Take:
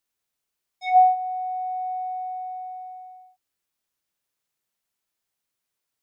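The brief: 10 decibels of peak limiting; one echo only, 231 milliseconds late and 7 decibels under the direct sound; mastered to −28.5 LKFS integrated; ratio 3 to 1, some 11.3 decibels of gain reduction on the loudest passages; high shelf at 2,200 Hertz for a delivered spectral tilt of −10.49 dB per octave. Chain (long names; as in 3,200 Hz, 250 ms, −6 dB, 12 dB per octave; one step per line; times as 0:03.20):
high-shelf EQ 2,200 Hz −4 dB
downward compressor 3 to 1, threshold −28 dBFS
brickwall limiter −30 dBFS
single-tap delay 231 ms −7 dB
level +3.5 dB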